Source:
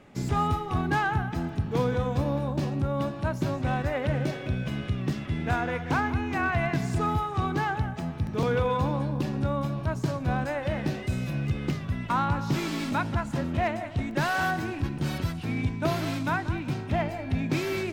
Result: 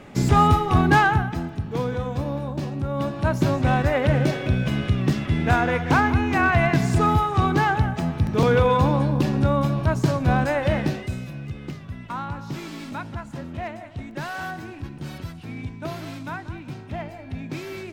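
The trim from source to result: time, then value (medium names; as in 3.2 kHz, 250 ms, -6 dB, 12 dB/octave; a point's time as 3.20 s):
0.99 s +9.5 dB
1.52 s 0 dB
2.80 s 0 dB
3.34 s +7.5 dB
10.75 s +7.5 dB
11.34 s -5 dB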